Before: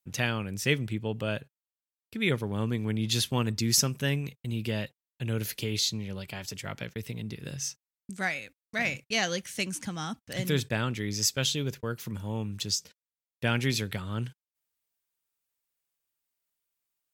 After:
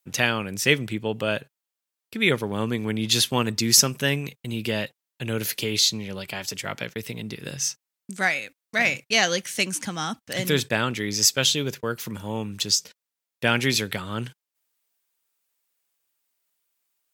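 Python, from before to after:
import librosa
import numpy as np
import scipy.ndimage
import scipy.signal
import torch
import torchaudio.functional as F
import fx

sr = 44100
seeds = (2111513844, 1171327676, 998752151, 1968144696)

y = fx.highpass(x, sr, hz=280.0, slope=6)
y = y * librosa.db_to_amplitude(8.0)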